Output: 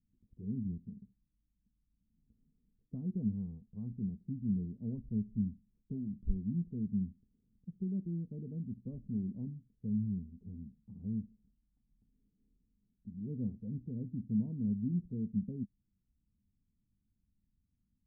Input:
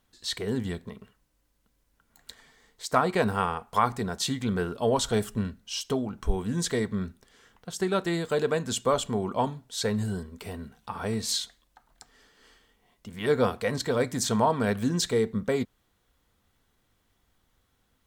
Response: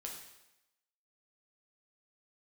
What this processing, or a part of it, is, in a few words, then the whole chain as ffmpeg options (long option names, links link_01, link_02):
the neighbour's flat through the wall: -af "lowpass=frequency=240:width=0.5412,lowpass=frequency=240:width=1.3066,equalizer=frequency=200:width_type=o:width=0.5:gain=5.5,volume=-7dB"